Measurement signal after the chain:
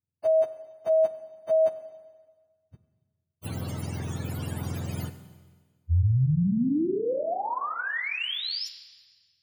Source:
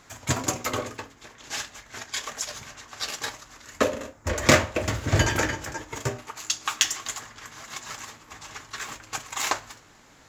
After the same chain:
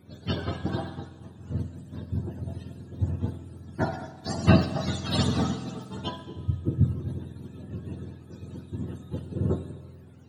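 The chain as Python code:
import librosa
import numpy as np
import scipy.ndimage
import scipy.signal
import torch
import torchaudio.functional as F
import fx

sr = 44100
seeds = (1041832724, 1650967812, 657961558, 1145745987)

y = fx.octave_mirror(x, sr, pivot_hz=630.0)
y = fx.rev_schroeder(y, sr, rt60_s=1.5, comb_ms=31, drr_db=11.0)
y = y * 10.0 ** (-2.0 / 20.0)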